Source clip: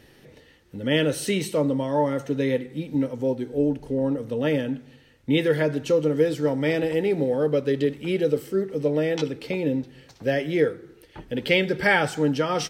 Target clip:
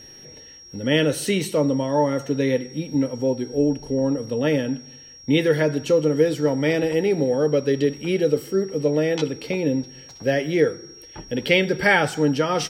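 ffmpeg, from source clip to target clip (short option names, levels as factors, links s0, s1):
-af "aeval=exprs='val(0)+0.00562*sin(2*PI*5600*n/s)':c=same,volume=1.33"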